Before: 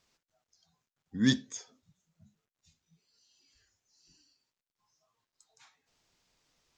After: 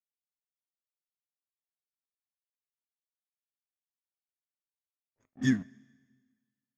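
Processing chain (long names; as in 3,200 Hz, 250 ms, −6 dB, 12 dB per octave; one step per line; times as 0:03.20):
played backwards from end to start
phaser with its sweep stopped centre 1,700 Hz, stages 4
dead-zone distortion −48.5 dBFS
low-pass that shuts in the quiet parts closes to 570 Hz, open at −36 dBFS
coupled-rooms reverb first 0.24 s, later 1.6 s, from −18 dB, DRR 14 dB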